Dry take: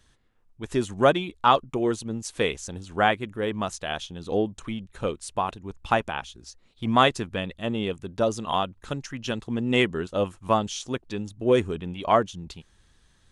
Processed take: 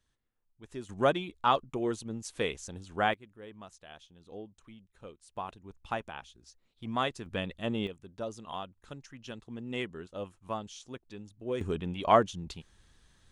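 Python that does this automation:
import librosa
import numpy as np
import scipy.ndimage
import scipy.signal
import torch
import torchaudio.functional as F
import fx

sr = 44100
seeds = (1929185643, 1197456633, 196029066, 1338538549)

y = fx.gain(x, sr, db=fx.steps((0.0, -16.0), (0.89, -7.0), (3.14, -20.0), (5.36, -12.0), (7.26, -4.5), (7.87, -14.0), (11.61, -2.0)))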